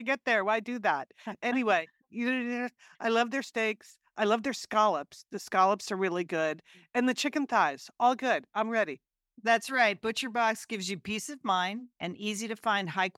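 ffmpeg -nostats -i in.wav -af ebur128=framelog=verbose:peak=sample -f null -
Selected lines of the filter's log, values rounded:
Integrated loudness:
  I:         -29.7 LUFS
  Threshold: -39.9 LUFS
Loudness range:
  LRA:         2.1 LU
  Threshold: -49.8 LUFS
  LRA low:   -30.9 LUFS
  LRA high:  -28.8 LUFS
Sample peak:
  Peak:      -11.6 dBFS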